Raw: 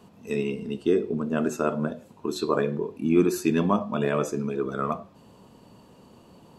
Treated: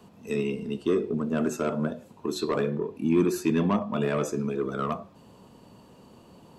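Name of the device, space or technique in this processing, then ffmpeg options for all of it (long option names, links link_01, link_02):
one-band saturation: -filter_complex "[0:a]acrossover=split=280|3100[link_01][link_02][link_03];[link_02]asoftclip=type=tanh:threshold=-21.5dB[link_04];[link_01][link_04][link_03]amix=inputs=3:normalize=0,asplit=3[link_05][link_06][link_07];[link_05]afade=type=out:start_time=2.68:duration=0.02[link_08];[link_06]adynamicequalizer=threshold=0.00355:dfrequency=3900:dqfactor=0.7:tfrequency=3900:tqfactor=0.7:attack=5:release=100:ratio=0.375:range=3:mode=cutabove:tftype=highshelf,afade=type=in:start_time=2.68:duration=0.02,afade=type=out:start_time=3.93:duration=0.02[link_09];[link_07]afade=type=in:start_time=3.93:duration=0.02[link_10];[link_08][link_09][link_10]amix=inputs=3:normalize=0"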